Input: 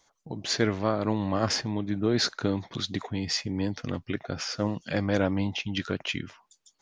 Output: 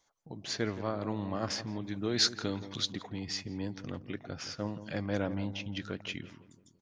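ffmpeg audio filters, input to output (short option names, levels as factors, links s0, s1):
-filter_complex "[0:a]asettb=1/sr,asplit=3[s0][s1][s2];[s0]atrim=end=1.814[s3];[s1]atrim=start=1.81:end=2.93,asetpts=PTS-STARTPTS,afade=t=in:d=0.004:c=qsin,afade=t=out:st=1.116:d=0.004:c=qsin,highshelf=f=2100:g=10.5[s4];[s2]atrim=start=2.926[s5];[s3][s4]acrossfade=d=0.004:c1=hsin:c2=qsin[s6];[s6][s5]acrossfade=d=0.004:c1=qsin:c2=hsin,asplit=2[s7][s8];[s8]adelay=169,lowpass=f=980:p=1,volume=0.266,asplit=2[s9][s10];[s10]adelay=169,lowpass=f=980:p=1,volume=0.53,asplit=2[s11][s12];[s12]adelay=169,lowpass=f=980:p=1,volume=0.53,asplit=2[s13][s14];[s14]adelay=169,lowpass=f=980:p=1,volume=0.53,asplit=2[s15][s16];[s16]adelay=169,lowpass=f=980:p=1,volume=0.53,asplit=2[s17][s18];[s18]adelay=169,lowpass=f=980:p=1,volume=0.53[s19];[s7][s9][s11][s13][s15][s17][s19]amix=inputs=7:normalize=0,volume=0.398"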